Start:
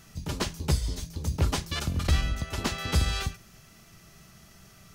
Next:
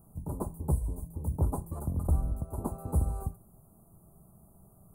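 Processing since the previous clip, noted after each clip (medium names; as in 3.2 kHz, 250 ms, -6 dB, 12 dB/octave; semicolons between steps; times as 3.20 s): elliptic band-stop 950–9700 Hz, stop band 40 dB; trim -2.5 dB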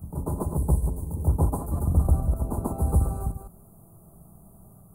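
chunks repeated in reverse 158 ms, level -8 dB; reverse echo 138 ms -3.5 dB; trim +4.5 dB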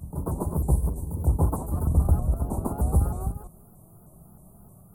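vibrato with a chosen wave saw up 3.2 Hz, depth 160 cents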